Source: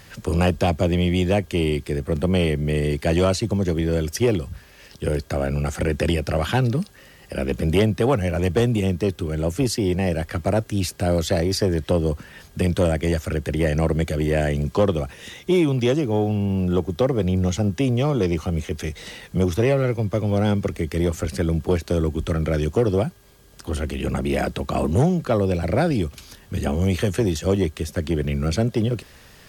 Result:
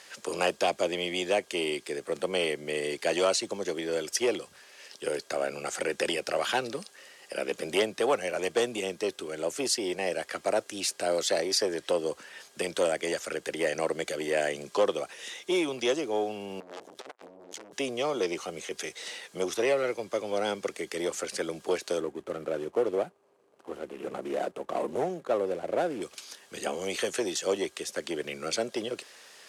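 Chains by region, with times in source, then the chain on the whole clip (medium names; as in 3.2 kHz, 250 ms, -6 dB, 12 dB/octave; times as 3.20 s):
16.60–17.73 s: overload inside the chain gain 30 dB + transformer saturation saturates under 280 Hz
22.00–26.02 s: median filter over 25 samples + peaking EQ 4.8 kHz -8 dB 2 oct
whole clip: Chebyshev band-pass 440–8500 Hz, order 2; tilt EQ +1.5 dB/octave; trim -3 dB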